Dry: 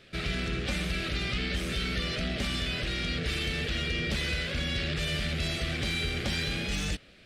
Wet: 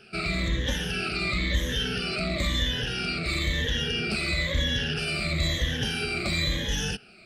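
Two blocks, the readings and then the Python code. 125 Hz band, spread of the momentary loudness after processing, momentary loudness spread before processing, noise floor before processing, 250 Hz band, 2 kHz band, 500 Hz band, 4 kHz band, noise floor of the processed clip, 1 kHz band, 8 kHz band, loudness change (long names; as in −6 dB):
+3.0 dB, 2 LU, 2 LU, −55 dBFS, +2.5 dB, +3.5 dB, +3.5 dB, +4.0 dB, −52 dBFS, +4.0 dB, +4.0 dB, +3.5 dB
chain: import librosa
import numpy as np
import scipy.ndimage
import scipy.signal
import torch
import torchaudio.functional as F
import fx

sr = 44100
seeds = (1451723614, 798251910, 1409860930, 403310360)

y = fx.spec_ripple(x, sr, per_octave=1.1, drift_hz=-1.0, depth_db=18)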